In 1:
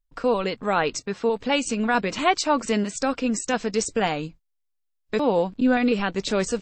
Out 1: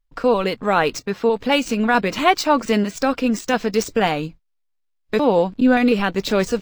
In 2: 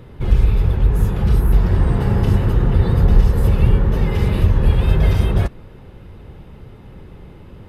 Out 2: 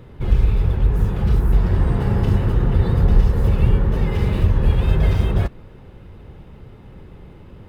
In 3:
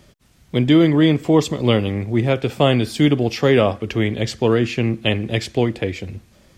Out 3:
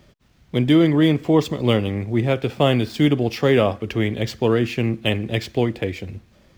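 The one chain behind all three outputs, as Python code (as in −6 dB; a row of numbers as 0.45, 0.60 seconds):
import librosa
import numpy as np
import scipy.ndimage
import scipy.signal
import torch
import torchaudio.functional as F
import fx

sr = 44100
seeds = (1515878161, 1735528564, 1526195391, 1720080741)

y = scipy.signal.medfilt(x, 5)
y = librosa.util.normalize(y) * 10.0 ** (-3 / 20.0)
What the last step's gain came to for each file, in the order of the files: +5.0, −2.0, −2.0 decibels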